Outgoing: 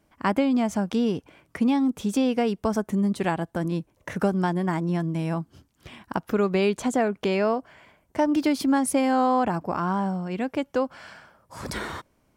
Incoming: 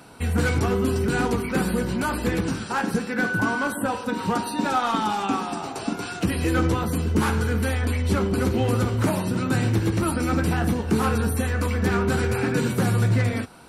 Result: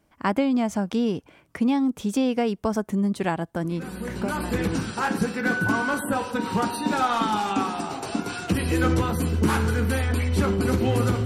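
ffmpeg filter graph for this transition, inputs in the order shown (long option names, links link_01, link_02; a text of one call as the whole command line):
ffmpeg -i cue0.wav -i cue1.wav -filter_complex "[0:a]apad=whole_dur=11.25,atrim=end=11.25,atrim=end=4.76,asetpts=PTS-STARTPTS[link_01];[1:a]atrim=start=1.33:end=8.98,asetpts=PTS-STARTPTS[link_02];[link_01][link_02]acrossfade=duration=1.16:curve1=tri:curve2=tri" out.wav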